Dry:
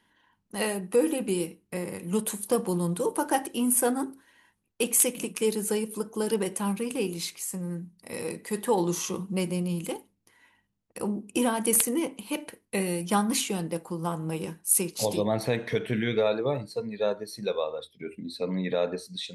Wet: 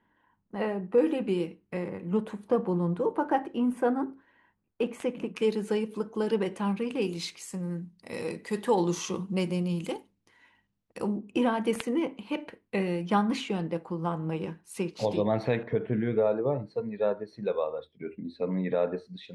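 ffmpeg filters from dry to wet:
-af "asetnsamples=n=441:p=0,asendcmd='0.98 lowpass f 2900;1.88 lowpass f 1700;5.36 lowpass f 3300;7.02 lowpass f 5500;11.17 lowpass f 2800;15.63 lowpass f 1100;16.66 lowpass f 1800',lowpass=1500"

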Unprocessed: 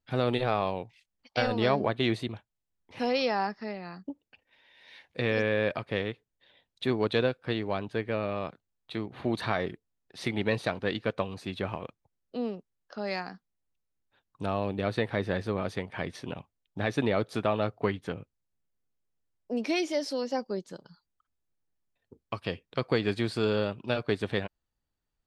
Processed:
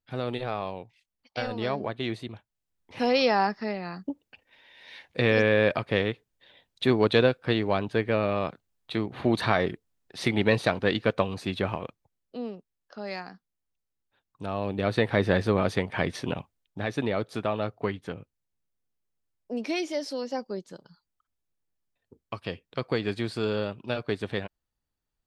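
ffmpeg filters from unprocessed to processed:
-af "volume=5.62,afade=t=in:st=2.24:d=1.07:silence=0.334965,afade=t=out:st=11.5:d=0.88:silence=0.398107,afade=t=in:st=14.47:d=0.81:silence=0.334965,afade=t=out:st=16.32:d=0.48:silence=0.398107"

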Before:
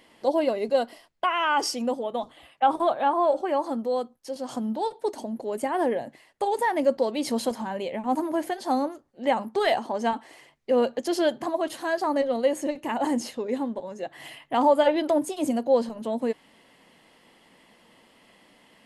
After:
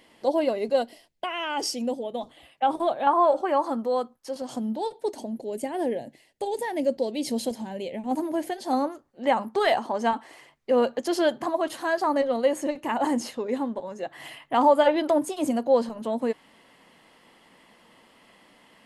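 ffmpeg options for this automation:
-af "asetnsamples=n=441:p=0,asendcmd='0.82 equalizer g -11.5;2.21 equalizer g -5.5;3.07 equalizer g 6;4.42 equalizer g -6;5.36 equalizer g -15;8.11 equalizer g -6.5;8.73 equalizer g 3.5',equalizer=f=1200:t=o:w=1:g=-1.5"

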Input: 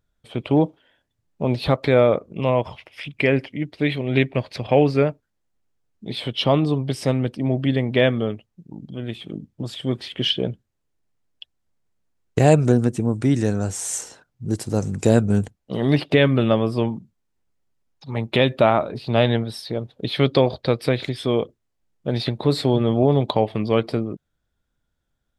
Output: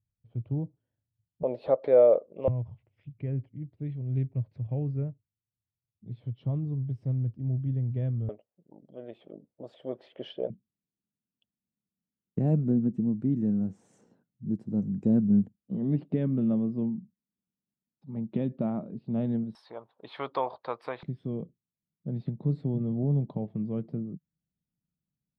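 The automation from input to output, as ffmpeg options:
-af "asetnsamples=n=441:p=0,asendcmd='1.43 bandpass f 550;2.48 bandpass f 110;8.29 bandpass f 580;10.5 bandpass f 200;19.55 bandpass f 1000;21.03 bandpass f 170',bandpass=f=110:t=q:w=3.6:csg=0"

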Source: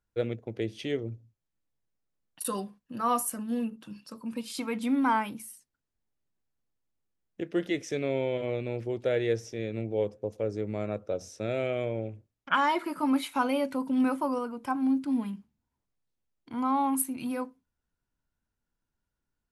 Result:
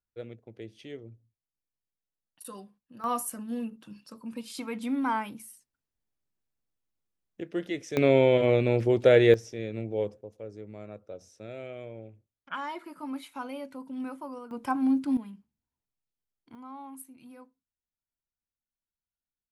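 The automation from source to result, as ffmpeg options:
-af "asetnsamples=n=441:p=0,asendcmd='3.04 volume volume -3dB;7.97 volume volume 9dB;9.34 volume volume -1dB;10.21 volume volume -10.5dB;14.51 volume volume 1.5dB;15.17 volume volume -8.5dB;16.55 volume volume -17dB',volume=0.282"

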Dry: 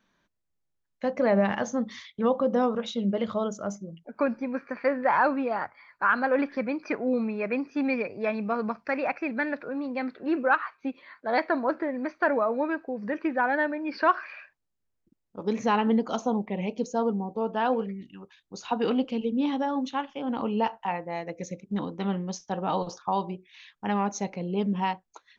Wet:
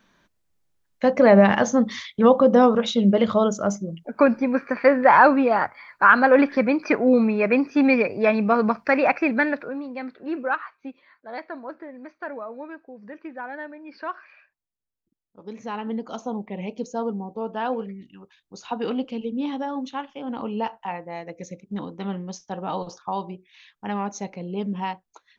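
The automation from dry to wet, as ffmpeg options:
-af "volume=7.5,afade=t=out:st=9.28:d=0.57:silence=0.281838,afade=t=out:st=10.52:d=0.75:silence=0.421697,afade=t=in:st=15.56:d=1.11:silence=0.375837"

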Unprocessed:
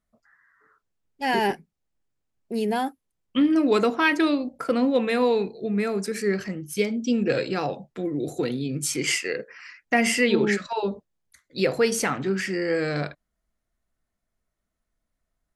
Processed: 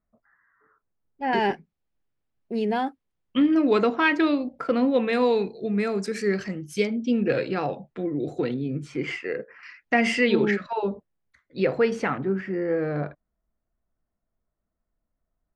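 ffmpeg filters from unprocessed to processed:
-af "asetnsamples=n=441:p=0,asendcmd='1.33 lowpass f 3700;5.13 lowpass f 6800;6.87 lowpass f 3000;8.54 lowpass f 1700;9.63 lowpass f 4100;10.51 lowpass f 2300;12.18 lowpass f 1200',lowpass=1500"

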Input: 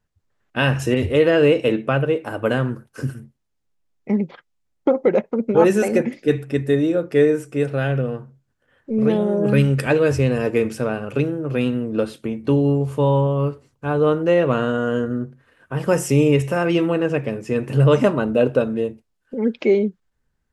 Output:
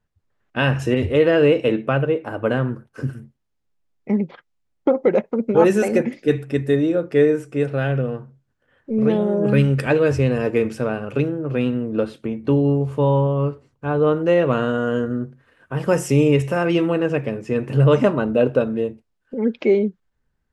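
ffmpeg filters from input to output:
-af "asetnsamples=n=441:p=0,asendcmd='2.06 lowpass f 2300;3.13 lowpass f 4900;5.03 lowpass f 9600;6.76 lowpass f 4800;11.29 lowpass f 3000;14.16 lowpass f 7600;17.29 lowpass f 4200',lowpass=f=4000:p=1"

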